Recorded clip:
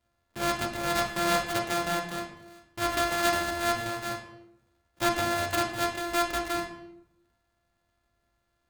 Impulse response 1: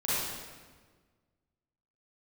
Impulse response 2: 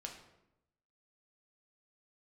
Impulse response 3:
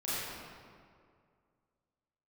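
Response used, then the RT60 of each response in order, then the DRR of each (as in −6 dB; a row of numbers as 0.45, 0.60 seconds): 2; 1.5, 0.90, 2.2 seconds; −11.0, 1.0, −11.5 decibels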